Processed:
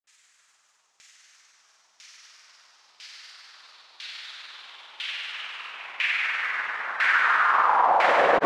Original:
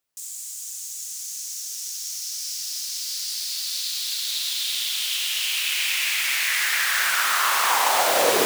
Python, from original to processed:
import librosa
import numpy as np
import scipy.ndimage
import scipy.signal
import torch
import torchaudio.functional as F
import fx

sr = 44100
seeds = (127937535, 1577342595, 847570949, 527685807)

y = x + 10.0 ** (-4.5 / 20.0) * np.pad(x, (int(216 * sr / 1000.0), 0))[:len(x)]
y = fx.granulator(y, sr, seeds[0], grain_ms=100.0, per_s=20.0, spray_ms=100.0, spread_st=0)
y = fx.filter_lfo_lowpass(y, sr, shape='saw_down', hz=1.0, low_hz=860.0, high_hz=2200.0, q=1.5)